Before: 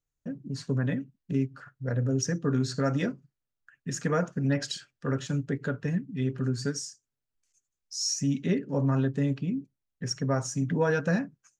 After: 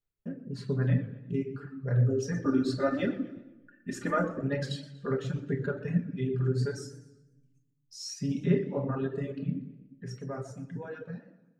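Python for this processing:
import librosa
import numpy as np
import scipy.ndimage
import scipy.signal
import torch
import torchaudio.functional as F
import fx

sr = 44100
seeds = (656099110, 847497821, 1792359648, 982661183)

y = fx.fade_out_tail(x, sr, length_s=2.94)
y = fx.graphic_eq_15(y, sr, hz=(100, 400, 6300), db=(4, 4, -10))
y = y + 10.0 ** (-17.5 / 20.0) * np.pad(y, (int(259 * sr / 1000.0), 0))[:len(y)]
y = fx.room_shoebox(y, sr, seeds[0], volume_m3=500.0, walls='mixed', distance_m=1.3)
y = fx.dereverb_blind(y, sr, rt60_s=1.6)
y = fx.comb(y, sr, ms=3.4, depth=0.96, at=(2.32, 4.41))
y = fx.echo_warbled(y, sr, ms=122, feedback_pct=37, rate_hz=2.8, cents=180, wet_db=-17.0)
y = F.gain(torch.from_numpy(y), -4.5).numpy()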